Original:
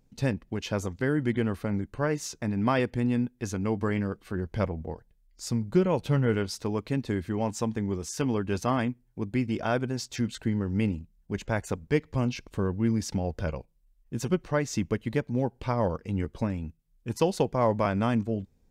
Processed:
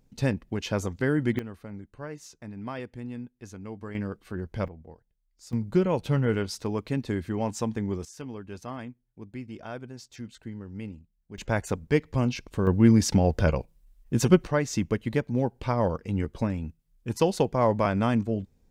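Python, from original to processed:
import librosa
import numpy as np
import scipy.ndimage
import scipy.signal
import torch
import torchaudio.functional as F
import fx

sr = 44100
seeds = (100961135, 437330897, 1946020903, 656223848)

y = fx.gain(x, sr, db=fx.steps((0.0, 1.5), (1.39, -11.0), (3.95, -2.5), (4.68, -11.5), (5.53, 0.0), (8.05, -11.0), (11.38, 2.0), (12.67, 8.0), (14.47, 1.5)))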